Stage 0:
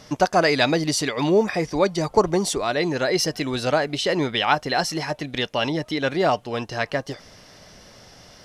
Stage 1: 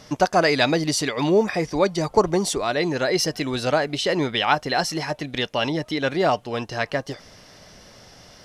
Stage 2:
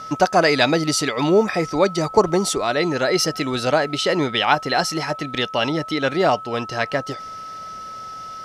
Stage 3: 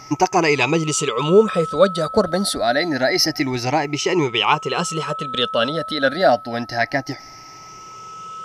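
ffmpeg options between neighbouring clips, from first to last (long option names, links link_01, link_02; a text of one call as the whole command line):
ffmpeg -i in.wav -af anull out.wav
ffmpeg -i in.wav -af "aeval=exprs='val(0)+0.02*sin(2*PI*1300*n/s)':channel_layout=same,lowshelf=frequency=61:gain=-8,volume=2.5dB" out.wav
ffmpeg -i in.wav -af "afftfilt=real='re*pow(10,15/40*sin(2*PI*(0.73*log(max(b,1)*sr/1024/100)/log(2)-(0.27)*(pts-256)/sr)))':imag='im*pow(10,15/40*sin(2*PI*(0.73*log(max(b,1)*sr/1024/100)/log(2)-(0.27)*(pts-256)/sr)))':win_size=1024:overlap=0.75,volume=-1.5dB" out.wav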